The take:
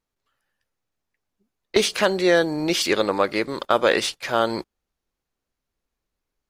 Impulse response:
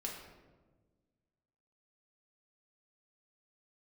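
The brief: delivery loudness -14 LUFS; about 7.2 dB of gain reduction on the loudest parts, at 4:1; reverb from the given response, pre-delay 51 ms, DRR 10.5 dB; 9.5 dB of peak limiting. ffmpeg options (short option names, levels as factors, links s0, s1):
-filter_complex "[0:a]acompressor=threshold=0.0891:ratio=4,alimiter=limit=0.188:level=0:latency=1,asplit=2[s0][s1];[1:a]atrim=start_sample=2205,adelay=51[s2];[s1][s2]afir=irnorm=-1:irlink=0,volume=0.299[s3];[s0][s3]amix=inputs=2:normalize=0,volume=4.47"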